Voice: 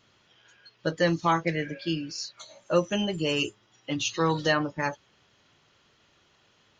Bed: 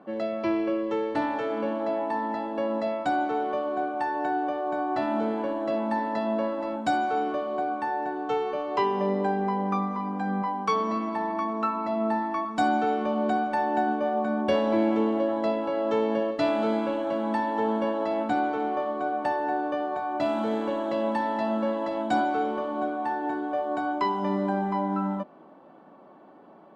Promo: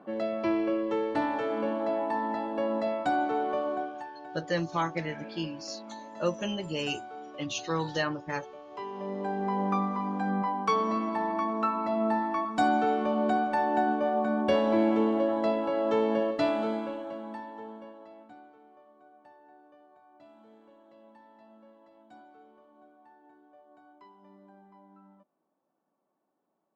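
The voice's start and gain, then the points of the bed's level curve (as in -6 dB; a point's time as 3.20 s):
3.50 s, -5.5 dB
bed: 3.71 s -1.5 dB
4.15 s -16.5 dB
8.68 s -16.5 dB
9.61 s -1 dB
16.37 s -1 dB
18.61 s -29 dB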